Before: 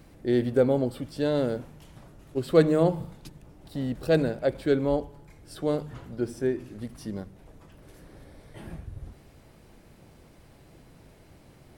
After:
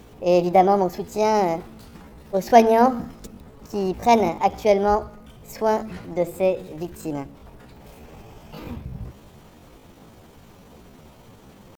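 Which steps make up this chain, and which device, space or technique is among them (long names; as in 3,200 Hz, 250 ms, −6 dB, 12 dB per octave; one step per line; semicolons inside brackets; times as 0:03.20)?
chipmunk voice (pitch shifter +6.5 semitones)
level +6 dB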